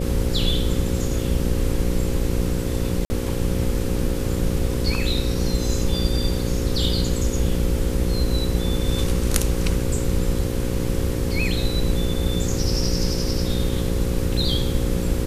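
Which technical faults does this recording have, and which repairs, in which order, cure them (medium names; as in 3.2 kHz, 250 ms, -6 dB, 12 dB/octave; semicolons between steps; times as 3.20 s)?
buzz 60 Hz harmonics 9 -26 dBFS
3.05–3.10 s: dropout 50 ms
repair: de-hum 60 Hz, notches 9; interpolate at 3.05 s, 50 ms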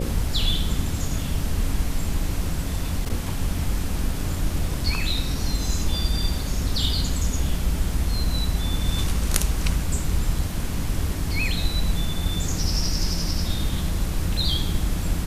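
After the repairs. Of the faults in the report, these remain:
nothing left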